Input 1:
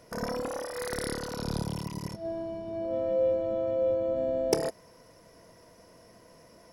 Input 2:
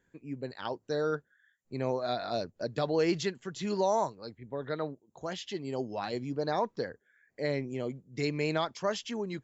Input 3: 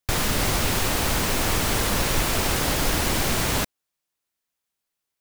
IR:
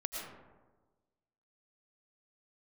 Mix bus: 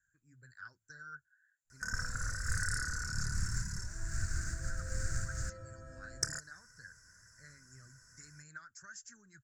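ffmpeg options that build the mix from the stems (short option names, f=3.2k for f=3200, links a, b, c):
-filter_complex "[0:a]adelay=1700,volume=1.5dB[a];[1:a]acompressor=threshold=-31dB:ratio=6,volume=-6.5dB,asplit=2[b][c];[2:a]equalizer=f=1.2k:w=0.77:g=-14.5,adynamicsmooth=sensitivity=3:basefreq=1.6k,acrusher=bits=6:mix=0:aa=0.5,adelay=1850,volume=-3dB[d];[c]apad=whole_len=311259[e];[d][e]sidechaincompress=threshold=-46dB:ratio=8:attack=35:release=163[f];[a][b][f]amix=inputs=3:normalize=0,firequalizer=gain_entry='entry(110,0);entry(220,-17);entry(470,-26);entry(840,-26);entry(1500,12);entry(2200,-14);entry(3200,-28);entry(4700,-2);entry(7300,14);entry(11000,-8)':delay=0.05:min_phase=1,flanger=delay=1.1:depth=2.8:regen=-56:speed=1.9:shape=sinusoidal"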